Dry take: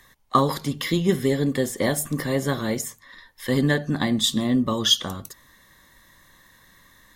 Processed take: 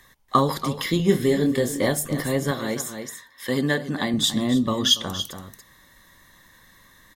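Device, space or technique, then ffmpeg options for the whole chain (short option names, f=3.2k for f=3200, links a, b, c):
ducked delay: -filter_complex "[0:a]asettb=1/sr,asplit=3[a][b][c];[a]atrim=end=0.974[d];[b]atrim=start=0.97:end=1.88,asetpts=PTS-STARTPTS,afade=t=in:d=0.004:c=qsin,afade=t=out:st=0.906:d=0.004:c=qsin,asplit=2[e][f];[f]adelay=25,volume=-5.5dB[g];[e][g]amix=inputs=2:normalize=0,atrim=end_sample=40131[h];[c]atrim=start=1.876[i];[d][h]acrossfade=d=0.004:c1=hsin:c2=qsin[j];[j][i]acrossfade=d=0.004:c1=qsin:c2=hsin,asplit=3[k][l][m];[l]adelay=284,volume=-6.5dB[n];[m]apad=whole_len=327972[o];[n][o]sidechaincompress=threshold=-25dB:ratio=4:attack=8.8:release=483[p];[k][p]amix=inputs=2:normalize=0,asettb=1/sr,asplit=3[q][r][s];[q]atrim=end=2.514[t];[r]atrim=start=2.51:end=4.14,asetpts=PTS-STARTPTS,afade=t=in:d=0.004:c=qsin,afade=t=out:st=1.626:d=0.004:c=qsin,highpass=f=220:p=1[u];[s]atrim=start=4.136[v];[t][u]acrossfade=d=0.004:c1=hsin:c2=qsin[w];[w][v]acrossfade=d=0.004:c1=qsin:c2=hsin"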